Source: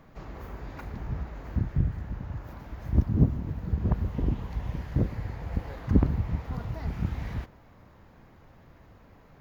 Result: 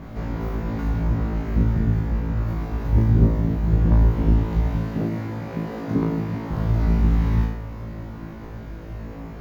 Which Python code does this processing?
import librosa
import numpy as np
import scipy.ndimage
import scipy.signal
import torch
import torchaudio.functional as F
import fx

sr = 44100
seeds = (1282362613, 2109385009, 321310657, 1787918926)

y = fx.bin_compress(x, sr, power=0.6)
y = fx.cheby1_highpass(y, sr, hz=200.0, order=2, at=(4.78, 6.51))
y = fx.room_flutter(y, sr, wall_m=3.1, rt60_s=0.65)
y = y * librosa.db_to_amplitude(-1.0)